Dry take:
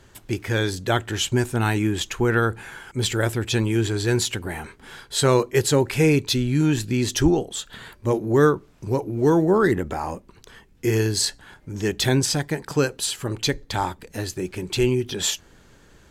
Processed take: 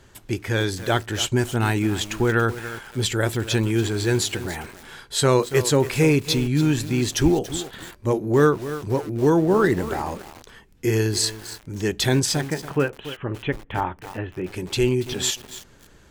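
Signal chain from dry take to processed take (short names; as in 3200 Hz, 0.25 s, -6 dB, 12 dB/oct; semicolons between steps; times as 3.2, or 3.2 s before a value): 12.41–14.5 elliptic low-pass 3000 Hz, stop band 40 dB; lo-fi delay 0.283 s, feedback 35%, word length 5-bit, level -12 dB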